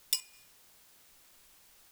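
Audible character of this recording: chopped level 3 Hz, depth 65%, duty 60%; a quantiser's noise floor 10-bit, dither triangular

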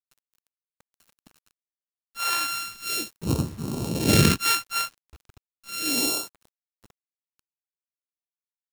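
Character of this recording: a buzz of ramps at a fixed pitch in blocks of 32 samples; phasing stages 2, 0.35 Hz, lowest notch 310–1900 Hz; a quantiser's noise floor 8-bit, dither none

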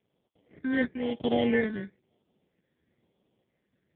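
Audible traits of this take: aliases and images of a low sample rate 1300 Hz, jitter 0%; random-step tremolo; phasing stages 8, 1 Hz, lowest notch 800–1700 Hz; AMR-NB

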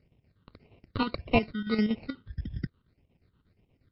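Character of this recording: aliases and images of a low sample rate 1700 Hz, jitter 0%; chopped level 8.4 Hz, depth 60%, duty 65%; phasing stages 8, 1.7 Hz, lowest notch 680–1400 Hz; MP3

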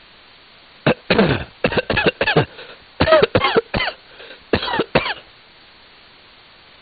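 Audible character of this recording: tremolo saw down 9.3 Hz, depth 75%; a quantiser's noise floor 8-bit, dither triangular; AC-3

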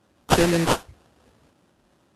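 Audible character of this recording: aliases and images of a low sample rate 2200 Hz, jitter 20%; Vorbis

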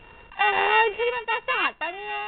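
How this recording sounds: a buzz of ramps at a fixed pitch in blocks of 16 samples; random-step tremolo 4.2 Hz; A-law

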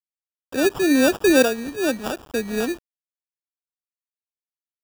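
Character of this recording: phasing stages 2, 2.3 Hz, lowest notch 760–2600 Hz; aliases and images of a low sample rate 2100 Hz, jitter 0%; tremolo saw up 0.7 Hz, depth 60%; a quantiser's noise floor 8-bit, dither none

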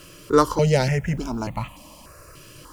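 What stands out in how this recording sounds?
a quantiser's noise floor 10-bit, dither none; notches that jump at a steady rate 3.4 Hz 230–1500 Hz

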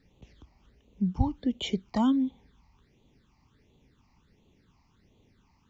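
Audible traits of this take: phasing stages 8, 1.4 Hz, lowest notch 450–1600 Hz

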